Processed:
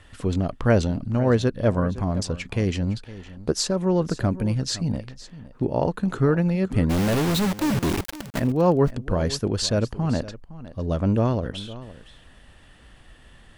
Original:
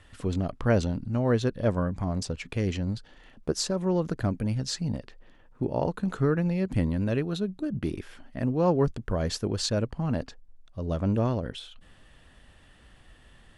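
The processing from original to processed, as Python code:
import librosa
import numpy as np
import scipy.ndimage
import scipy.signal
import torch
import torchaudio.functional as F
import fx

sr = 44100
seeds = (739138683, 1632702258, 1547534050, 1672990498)

y = fx.quant_companded(x, sr, bits=2, at=(6.89, 8.38), fade=0.02)
y = y + 10.0 ** (-16.5 / 20.0) * np.pad(y, (int(512 * sr / 1000.0), 0))[:len(y)]
y = y * 10.0 ** (4.5 / 20.0)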